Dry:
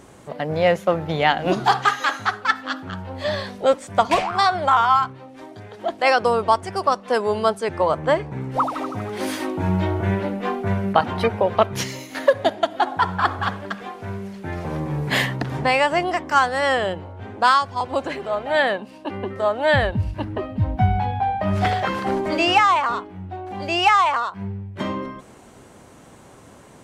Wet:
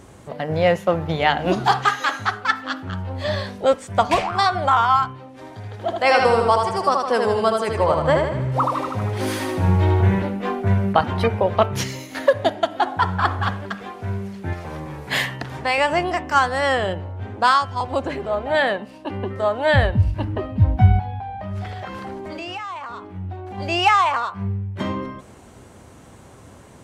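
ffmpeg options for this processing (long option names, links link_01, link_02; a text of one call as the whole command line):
ffmpeg -i in.wav -filter_complex "[0:a]asettb=1/sr,asplit=3[link_01][link_02][link_03];[link_01]atrim=end=5.294[link_04];[link_02]atrim=start=5.29:end=10.22,asetpts=PTS-STARTPTS,afade=type=in:duration=0.004:curve=qsin,afade=type=out:start_time=4.926:duration=0.004:curve=qsin,aecho=1:1:78|156|234|312|390|468|546:0.631|0.328|0.171|0.0887|0.0461|0.024|0.0125,atrim=end_sample=217413[link_05];[link_03]atrim=start=10.216[link_06];[link_04][link_05]acrossfade=duration=0.004:curve1=hsin:curve2=qsin[link_07];[link_07][link_06]acrossfade=duration=0.004:curve1=qsin:curve2=hsin,asettb=1/sr,asplit=3[link_08][link_09][link_10];[link_08]atrim=end=14.534[link_11];[link_09]atrim=start=14.53:end=15.78,asetpts=PTS-STARTPTS,afade=type=in:duration=0.004:curve=qsin,afade=type=out:start_time=1.246:duration=0.004:curve=qsin,lowshelf=frequency=470:gain=-10[link_12];[link_10]atrim=start=15.776[link_13];[link_11][link_12]acrossfade=duration=0.004:curve1=hsin:curve2=qsin[link_14];[link_14][link_13]acrossfade=duration=0.004:curve1=qsin:curve2=hsin,asettb=1/sr,asplit=3[link_15][link_16][link_17];[link_15]atrim=end=17.994[link_18];[link_16]atrim=start=17.99:end=18.55,asetpts=PTS-STARTPTS,afade=type=in:duration=0.004:curve=qsin,afade=type=out:start_time=0.556:duration=0.004:curve=qsin,tiltshelf=frequency=970:gain=3[link_19];[link_17]atrim=start=18.546[link_20];[link_18][link_19]acrossfade=duration=0.004:curve1=hsin:curve2=qsin[link_21];[link_21][link_20]acrossfade=duration=0.004:curve1=qsin:curve2=hsin,asettb=1/sr,asplit=3[link_22][link_23][link_24];[link_22]atrim=end=20.994[link_25];[link_23]atrim=start=20.99:end=23.58,asetpts=PTS-STARTPTS,afade=type=in:duration=0.004:curve=qsin,afade=type=out:start_time=2.586:duration=0.004:curve=qsin,acompressor=threshold=-30dB:ratio=5:attack=3.2:release=140:knee=1:detection=peak[link_26];[link_24]atrim=start=23.576[link_27];[link_25][link_26]acrossfade=duration=0.004:curve1=hsin:curve2=qsin[link_28];[link_28][link_27]acrossfade=duration=0.004:curve1=qsin:curve2=hsin,equalizer=frequency=76:width_type=o:width=1.4:gain=8,bandreject=frequency=147.7:width_type=h:width=4,bandreject=frequency=295.4:width_type=h:width=4,bandreject=frequency=443.1:width_type=h:width=4,bandreject=frequency=590.8:width_type=h:width=4,bandreject=frequency=738.5:width_type=h:width=4,bandreject=frequency=886.2:width_type=h:width=4,bandreject=frequency=1033.9:width_type=h:width=4,bandreject=frequency=1181.6:width_type=h:width=4,bandreject=frequency=1329.3:width_type=h:width=4,bandreject=frequency=1477:width_type=h:width=4,bandreject=frequency=1624.7:width_type=h:width=4,bandreject=frequency=1772.4:width_type=h:width=4,bandreject=frequency=1920.1:width_type=h:width=4,bandreject=frequency=2067.8:width_type=h:width=4,bandreject=frequency=2215.5:width_type=h:width=4,bandreject=frequency=2363.2:width_type=h:width=4,bandreject=frequency=2510.9:width_type=h:width=4,bandreject=frequency=2658.6:width_type=h:width=4,bandreject=frequency=2806.3:width_type=h:width=4,bandreject=frequency=2954:width_type=h:width=4,bandreject=frequency=3101.7:width_type=h:width=4" out.wav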